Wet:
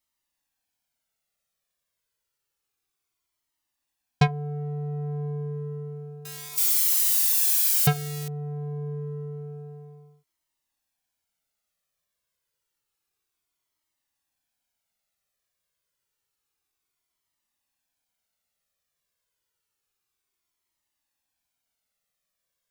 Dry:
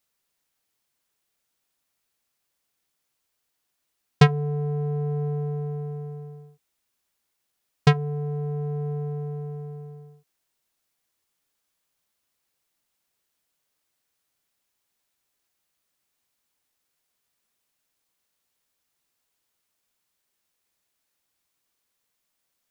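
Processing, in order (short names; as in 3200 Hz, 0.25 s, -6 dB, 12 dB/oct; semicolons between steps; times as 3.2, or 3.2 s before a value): 6.25–8.28 switching spikes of -13.5 dBFS; cascading flanger falling 0.29 Hz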